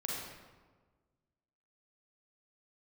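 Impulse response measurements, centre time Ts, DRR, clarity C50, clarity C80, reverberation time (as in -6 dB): 88 ms, -4.0 dB, -2.0 dB, 1.0 dB, 1.4 s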